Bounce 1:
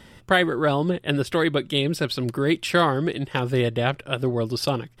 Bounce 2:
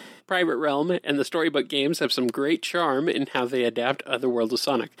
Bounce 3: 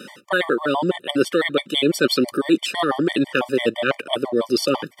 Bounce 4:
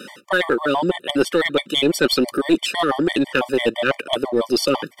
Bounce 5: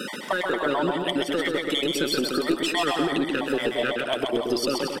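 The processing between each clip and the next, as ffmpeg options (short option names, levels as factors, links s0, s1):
-af "highpass=f=220:w=0.5412,highpass=f=220:w=1.3066,areverse,acompressor=threshold=0.0398:ratio=6,areverse,volume=2.51"
-af "afftfilt=real='re*gt(sin(2*PI*6*pts/sr)*(1-2*mod(floor(b*sr/1024/600),2)),0)':imag='im*gt(sin(2*PI*6*pts/sr)*(1-2*mod(floor(b*sr/1024/600),2)),0)':win_size=1024:overlap=0.75,volume=2.24"
-filter_complex "[0:a]lowshelf=f=100:g=-10.5,asplit=2[s0][s1];[s1]aeval=exprs='clip(val(0),-1,0.119)':c=same,volume=0.708[s2];[s0][s2]amix=inputs=2:normalize=0,volume=0.75"
-filter_complex "[0:a]alimiter=limit=0.237:level=0:latency=1:release=463,acompressor=threshold=0.0398:ratio=6,asplit=2[s0][s1];[s1]aecho=0:1:130|227.5|300.6|355.5|396.6:0.631|0.398|0.251|0.158|0.1[s2];[s0][s2]amix=inputs=2:normalize=0,volume=1.78"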